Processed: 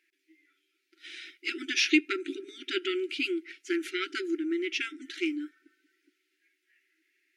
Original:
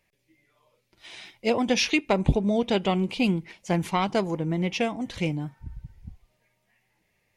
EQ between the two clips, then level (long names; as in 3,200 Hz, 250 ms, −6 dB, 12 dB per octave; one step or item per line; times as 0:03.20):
linear-phase brick-wall high-pass 280 Hz
linear-phase brick-wall band-stop 390–1,300 Hz
high-shelf EQ 4,600 Hz −9.5 dB
+2.5 dB